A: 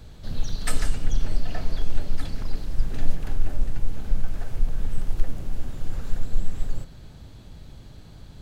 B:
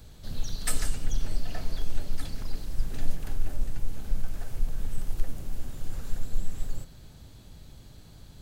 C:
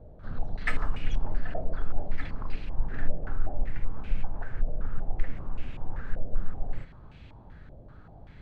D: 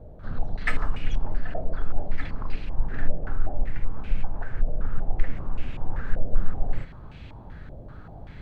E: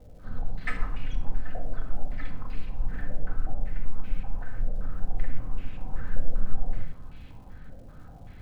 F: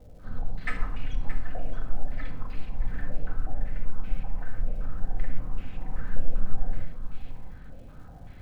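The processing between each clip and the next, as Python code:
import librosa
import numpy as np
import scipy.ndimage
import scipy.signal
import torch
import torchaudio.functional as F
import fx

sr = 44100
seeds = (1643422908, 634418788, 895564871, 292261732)

y1 = fx.high_shelf(x, sr, hz=6100.0, db=11.5)
y1 = y1 * librosa.db_to_amplitude(-5.0)
y2 = fx.filter_held_lowpass(y1, sr, hz=5.2, low_hz=610.0, high_hz=2500.0)
y3 = fx.rider(y2, sr, range_db=4, speed_s=2.0)
y3 = y3 * librosa.db_to_amplitude(3.0)
y4 = fx.dmg_crackle(y3, sr, seeds[0], per_s=270.0, level_db=-47.0)
y4 = fx.room_shoebox(y4, sr, seeds[1], volume_m3=2100.0, walls='furnished', distance_m=2.0)
y4 = y4 * librosa.db_to_amplitude(-7.5)
y5 = y4 + 10.0 ** (-12.0 / 20.0) * np.pad(y4, (int(623 * sr / 1000.0), 0))[:len(y4)]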